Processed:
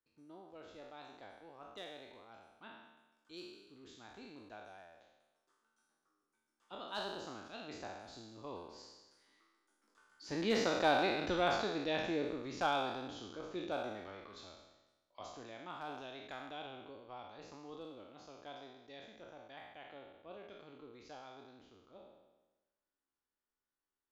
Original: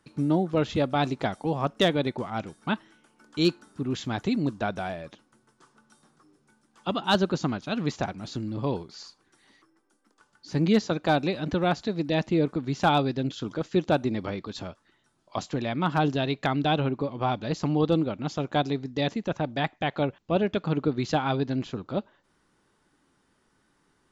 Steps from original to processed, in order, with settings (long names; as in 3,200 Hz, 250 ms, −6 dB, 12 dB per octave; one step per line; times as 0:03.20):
peak hold with a decay on every bin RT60 1.13 s
source passing by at 0:11.10, 8 m/s, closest 7.2 metres
parametric band 150 Hz −13.5 dB 1.3 octaves
level −7 dB